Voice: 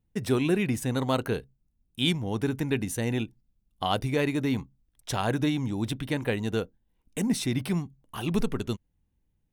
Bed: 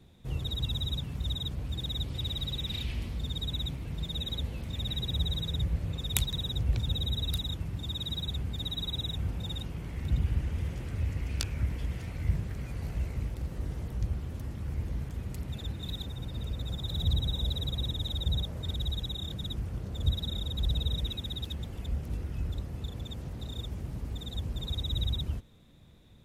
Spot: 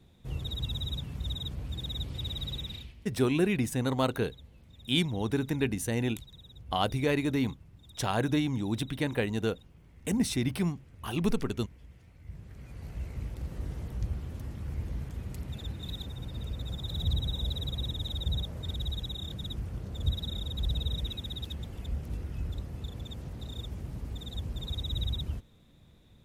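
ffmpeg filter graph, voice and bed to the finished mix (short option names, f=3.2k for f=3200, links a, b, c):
-filter_complex "[0:a]adelay=2900,volume=-1.5dB[a];[1:a]volume=15dB,afade=t=out:st=2.56:d=0.38:silence=0.149624,afade=t=in:st=12.24:d=1.27:silence=0.141254[b];[a][b]amix=inputs=2:normalize=0"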